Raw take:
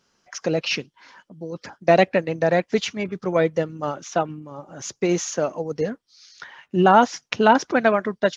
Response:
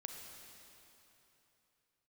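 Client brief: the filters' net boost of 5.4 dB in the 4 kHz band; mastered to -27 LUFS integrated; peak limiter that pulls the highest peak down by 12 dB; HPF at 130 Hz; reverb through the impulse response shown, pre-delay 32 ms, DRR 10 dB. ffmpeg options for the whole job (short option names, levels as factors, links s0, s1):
-filter_complex "[0:a]highpass=130,equalizer=f=4000:t=o:g=7.5,alimiter=limit=0.266:level=0:latency=1,asplit=2[s0][s1];[1:a]atrim=start_sample=2205,adelay=32[s2];[s1][s2]afir=irnorm=-1:irlink=0,volume=0.447[s3];[s0][s3]amix=inputs=2:normalize=0,volume=0.75"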